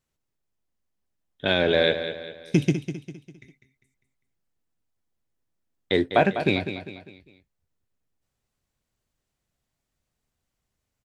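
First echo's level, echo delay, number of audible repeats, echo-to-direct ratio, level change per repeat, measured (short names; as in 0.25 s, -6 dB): -10.0 dB, 0.2 s, 4, -9.0 dB, -7.5 dB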